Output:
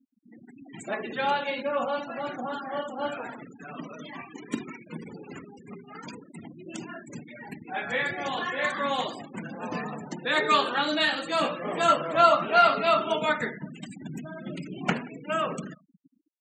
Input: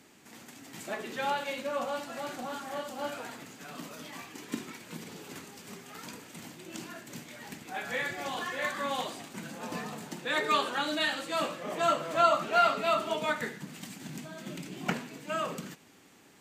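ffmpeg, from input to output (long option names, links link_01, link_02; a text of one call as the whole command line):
ffmpeg -i in.wav -filter_complex "[0:a]asplit=3[link_01][link_02][link_03];[link_01]afade=type=out:start_time=11.43:duration=0.02[link_04];[link_02]asplit=2[link_05][link_06];[link_06]adelay=17,volume=-7dB[link_07];[link_05][link_07]amix=inputs=2:normalize=0,afade=type=in:start_time=11.43:duration=0.02,afade=type=out:start_time=11.91:duration=0.02[link_08];[link_03]afade=type=in:start_time=11.91:duration=0.02[link_09];[link_04][link_08][link_09]amix=inputs=3:normalize=0,aecho=1:1:179|358|537|716:0.0631|0.0366|0.0212|0.0123,afftfilt=real='re*gte(hypot(re,im),0.00891)':imag='im*gte(hypot(re,im),0.00891)':win_size=1024:overlap=0.75,volume=5dB" out.wav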